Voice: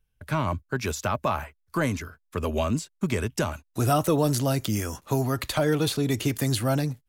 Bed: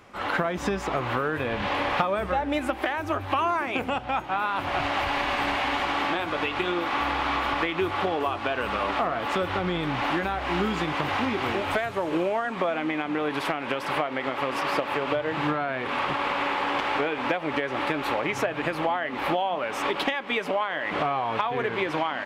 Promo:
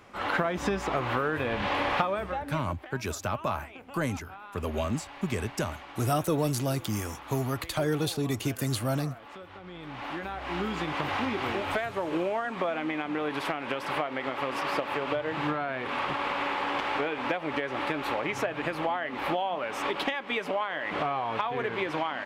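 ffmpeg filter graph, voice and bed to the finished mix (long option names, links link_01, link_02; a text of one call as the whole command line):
ffmpeg -i stem1.wav -i stem2.wav -filter_complex "[0:a]adelay=2200,volume=-4.5dB[link_01];[1:a]volume=14dB,afade=type=out:start_time=1.94:duration=0.74:silence=0.133352,afade=type=in:start_time=9.62:duration=1.38:silence=0.16788[link_02];[link_01][link_02]amix=inputs=2:normalize=0" out.wav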